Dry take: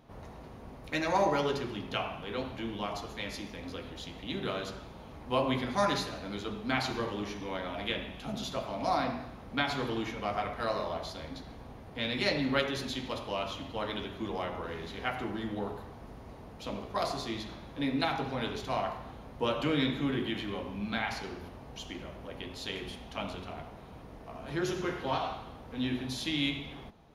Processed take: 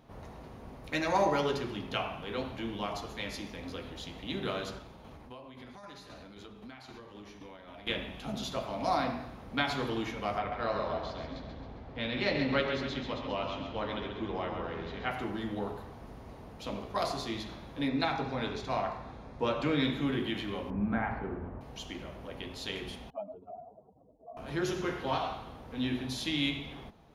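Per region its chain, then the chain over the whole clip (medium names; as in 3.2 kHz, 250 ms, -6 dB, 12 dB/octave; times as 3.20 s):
4.78–7.87 s: compression 10:1, threshold -43 dBFS + tremolo saw down 3.8 Hz, depth 45%
10.38–15.11 s: distance through air 160 m + two-band feedback delay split 330 Hz, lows 287 ms, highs 134 ms, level -7 dB
17.88–19.84 s: low-pass 6.9 kHz + band-stop 3 kHz, Q 7.3
20.70–21.61 s: low-pass 1.8 kHz 24 dB/octave + bass shelf 500 Hz +6 dB
23.10–24.37 s: spectral contrast enhancement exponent 2.7 + band-pass filter 610 Hz, Q 1.7
whole clip: none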